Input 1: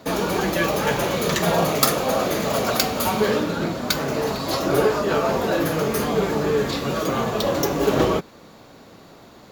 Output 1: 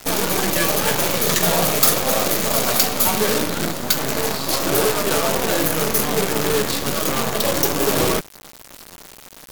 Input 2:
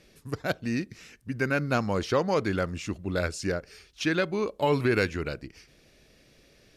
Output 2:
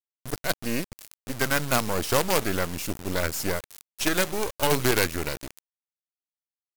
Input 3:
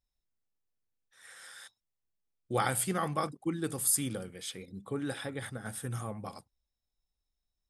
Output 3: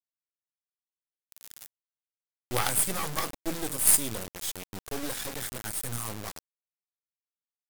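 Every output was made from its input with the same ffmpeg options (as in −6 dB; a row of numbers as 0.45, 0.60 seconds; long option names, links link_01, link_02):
-af "acrusher=bits=4:dc=4:mix=0:aa=0.000001,asoftclip=type=hard:threshold=-18.5dB,aemphasis=mode=production:type=cd,volume=4.5dB"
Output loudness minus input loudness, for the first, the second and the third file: +3.5, +2.5, +5.5 LU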